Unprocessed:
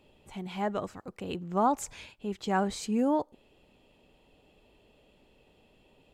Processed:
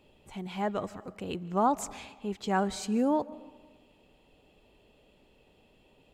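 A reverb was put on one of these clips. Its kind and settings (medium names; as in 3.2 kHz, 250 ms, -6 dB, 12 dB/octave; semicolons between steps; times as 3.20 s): algorithmic reverb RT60 1.4 s, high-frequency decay 0.6×, pre-delay 105 ms, DRR 19 dB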